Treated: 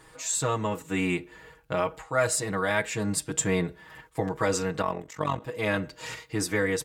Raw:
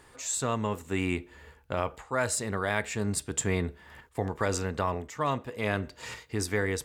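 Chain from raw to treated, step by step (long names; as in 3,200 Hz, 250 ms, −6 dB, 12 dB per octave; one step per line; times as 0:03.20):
comb filter 6.3 ms, depth 100%
0:04.82–0:05.42: amplitude modulation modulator 46 Hz, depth 65%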